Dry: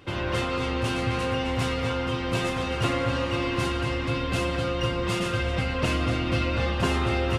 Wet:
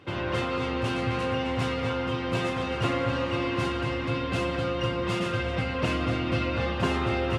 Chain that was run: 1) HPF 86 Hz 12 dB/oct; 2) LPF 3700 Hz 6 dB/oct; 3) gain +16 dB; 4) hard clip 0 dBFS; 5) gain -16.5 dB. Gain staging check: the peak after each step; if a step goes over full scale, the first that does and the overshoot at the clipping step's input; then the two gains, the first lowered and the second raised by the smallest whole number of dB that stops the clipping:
-12.0, -12.5, +3.5, 0.0, -16.5 dBFS; step 3, 3.5 dB; step 3 +12 dB, step 5 -12.5 dB

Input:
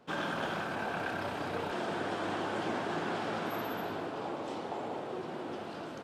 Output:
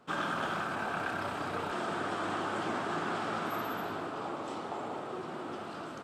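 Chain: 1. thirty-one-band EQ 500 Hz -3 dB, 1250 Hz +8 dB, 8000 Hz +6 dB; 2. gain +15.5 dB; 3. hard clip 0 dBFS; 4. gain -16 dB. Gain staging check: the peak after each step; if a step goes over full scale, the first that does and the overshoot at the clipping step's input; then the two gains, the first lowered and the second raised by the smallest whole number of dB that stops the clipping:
-21.5, -6.0, -6.0, -22.0 dBFS; no overload

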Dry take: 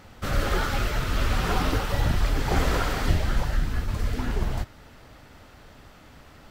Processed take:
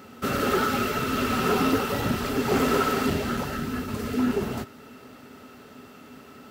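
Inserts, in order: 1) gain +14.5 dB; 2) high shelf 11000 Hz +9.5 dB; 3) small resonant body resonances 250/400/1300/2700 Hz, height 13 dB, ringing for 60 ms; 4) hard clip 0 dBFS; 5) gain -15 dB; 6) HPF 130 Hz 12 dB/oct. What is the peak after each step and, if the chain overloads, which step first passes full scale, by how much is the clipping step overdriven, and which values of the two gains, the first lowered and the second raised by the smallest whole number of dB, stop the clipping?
+4.5, +4.5, +7.0, 0.0, -15.0, -10.0 dBFS; step 1, 7.0 dB; step 1 +7.5 dB, step 5 -8 dB

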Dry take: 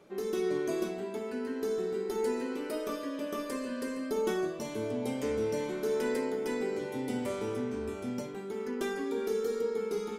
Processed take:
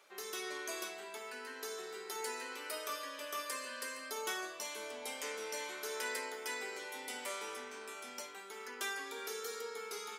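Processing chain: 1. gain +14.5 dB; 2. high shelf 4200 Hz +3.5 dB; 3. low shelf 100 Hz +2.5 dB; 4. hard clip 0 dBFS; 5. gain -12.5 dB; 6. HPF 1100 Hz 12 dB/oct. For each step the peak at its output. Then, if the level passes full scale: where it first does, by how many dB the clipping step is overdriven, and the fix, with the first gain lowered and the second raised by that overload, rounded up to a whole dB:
-5.0, -4.5, -4.5, -4.5, -17.0, -25.0 dBFS; no overload

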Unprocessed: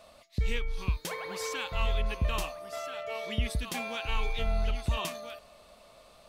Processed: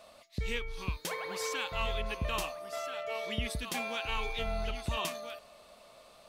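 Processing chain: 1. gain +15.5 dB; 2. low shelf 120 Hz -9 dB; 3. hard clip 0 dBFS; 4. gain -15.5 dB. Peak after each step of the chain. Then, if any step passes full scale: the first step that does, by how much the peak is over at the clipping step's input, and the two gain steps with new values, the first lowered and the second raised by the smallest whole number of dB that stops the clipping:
-2.0, -5.0, -5.0, -20.5 dBFS; no overload

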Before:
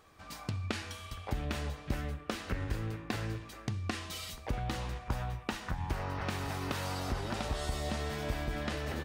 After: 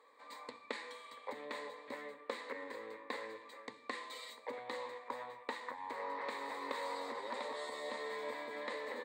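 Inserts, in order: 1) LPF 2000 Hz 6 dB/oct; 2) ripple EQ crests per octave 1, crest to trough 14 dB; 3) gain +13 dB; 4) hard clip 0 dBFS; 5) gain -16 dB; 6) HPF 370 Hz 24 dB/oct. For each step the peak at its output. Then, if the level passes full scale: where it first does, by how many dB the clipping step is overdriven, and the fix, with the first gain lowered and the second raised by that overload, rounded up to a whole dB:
-20.0, -18.0, -5.0, -5.0, -21.0, -23.5 dBFS; no overload

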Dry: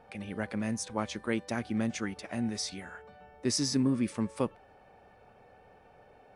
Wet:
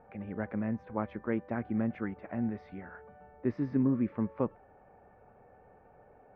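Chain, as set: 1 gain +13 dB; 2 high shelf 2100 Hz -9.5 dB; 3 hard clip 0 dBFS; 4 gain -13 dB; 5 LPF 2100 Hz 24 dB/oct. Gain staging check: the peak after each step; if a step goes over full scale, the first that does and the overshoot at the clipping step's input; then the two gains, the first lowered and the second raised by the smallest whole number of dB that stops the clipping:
-3.5, -4.5, -4.5, -17.5, -17.5 dBFS; no overload

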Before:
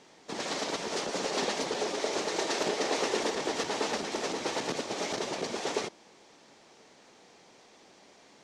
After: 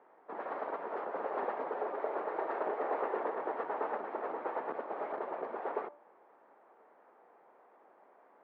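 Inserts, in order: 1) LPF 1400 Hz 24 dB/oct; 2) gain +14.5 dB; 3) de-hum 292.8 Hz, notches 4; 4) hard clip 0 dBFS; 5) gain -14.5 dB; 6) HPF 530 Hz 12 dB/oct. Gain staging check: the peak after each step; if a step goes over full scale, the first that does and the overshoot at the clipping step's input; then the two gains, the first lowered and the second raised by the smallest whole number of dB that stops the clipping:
-17.5, -3.0, -3.0, -3.0, -17.5, -20.5 dBFS; no overload

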